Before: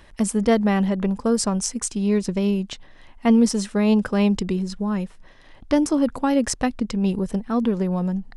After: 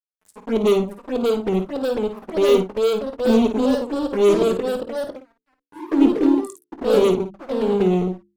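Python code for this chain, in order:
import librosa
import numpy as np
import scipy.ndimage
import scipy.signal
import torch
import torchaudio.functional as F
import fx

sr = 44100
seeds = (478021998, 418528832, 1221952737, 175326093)

p1 = fx.brickwall_bandstop(x, sr, low_hz=440.0, high_hz=6700.0)
p2 = fx.rider(p1, sr, range_db=10, speed_s=2.0)
p3 = p1 + (p2 * 10.0 ** (0.5 / 20.0))
p4 = fx.wah_lfo(p3, sr, hz=1.1, low_hz=410.0, high_hz=2400.0, q=12.0)
p5 = fx.fuzz(p4, sr, gain_db=39.0, gate_db=-48.0)
p6 = fx.env_flanger(p5, sr, rest_ms=11.2, full_db=-18.0)
p7 = fx.hum_notches(p6, sr, base_hz=50, count=7)
p8 = fx.echo_pitch(p7, sr, ms=657, semitones=2, count=3, db_per_echo=-3.0)
y = fx.room_early_taps(p8, sr, ms=(22, 54), db=(-15.5, -9.0))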